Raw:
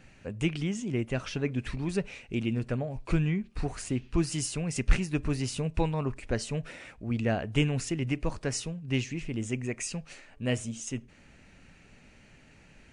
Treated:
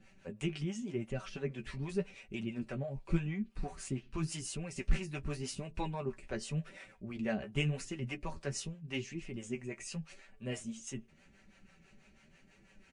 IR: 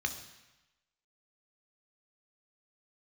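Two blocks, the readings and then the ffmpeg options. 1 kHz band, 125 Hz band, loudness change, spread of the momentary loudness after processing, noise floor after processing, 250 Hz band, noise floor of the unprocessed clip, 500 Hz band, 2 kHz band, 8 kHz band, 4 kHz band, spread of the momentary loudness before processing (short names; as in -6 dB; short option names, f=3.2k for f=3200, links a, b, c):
-6.5 dB, -8.0 dB, -8.0 dB, 8 LU, -64 dBFS, -8.0 dB, -57 dBFS, -7.0 dB, -7.0 dB, -8.0 dB, -7.0 dB, 7 LU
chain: -filter_complex "[0:a]equalizer=f=290:w=6.7:g=3,aecho=1:1:5.2:0.58,flanger=delay=9.2:depth=5.4:regen=29:speed=0.87:shape=sinusoidal,acrossover=split=450[a][b];[a]aeval=exprs='val(0)*(1-0.7/2+0.7/2*cos(2*PI*6.1*n/s))':c=same[c];[b]aeval=exprs='val(0)*(1-0.7/2-0.7/2*cos(2*PI*6.1*n/s))':c=same[d];[c][d]amix=inputs=2:normalize=0,volume=-1.5dB"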